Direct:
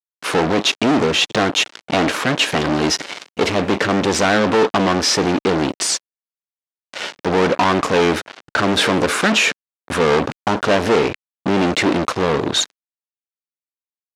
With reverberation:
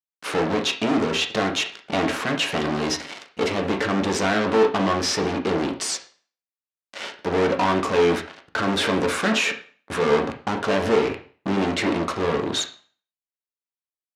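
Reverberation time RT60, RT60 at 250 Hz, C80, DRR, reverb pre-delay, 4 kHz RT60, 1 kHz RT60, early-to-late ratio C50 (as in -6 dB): 0.45 s, 0.45 s, 15.5 dB, 3.0 dB, 7 ms, 0.40 s, 0.45 s, 11.0 dB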